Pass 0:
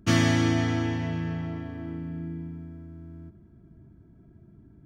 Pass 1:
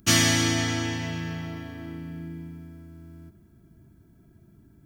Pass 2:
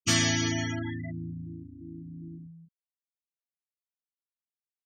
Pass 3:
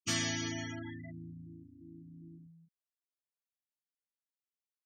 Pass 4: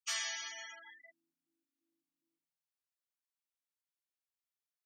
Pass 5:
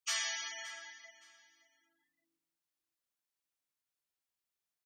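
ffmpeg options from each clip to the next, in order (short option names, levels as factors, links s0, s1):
-af "crystalizer=i=6.5:c=0,volume=0.75"
-af "afftfilt=real='re*gte(hypot(re,im),0.0708)':imag='im*gte(hypot(re,im),0.0708)':win_size=1024:overlap=0.75,volume=0.631"
-af "lowshelf=f=63:g=-11,volume=0.376"
-af "highpass=f=790:w=0.5412,highpass=f=790:w=1.3066,volume=0.75"
-af "aecho=1:1:569|1138:0.141|0.0339,volume=1.26"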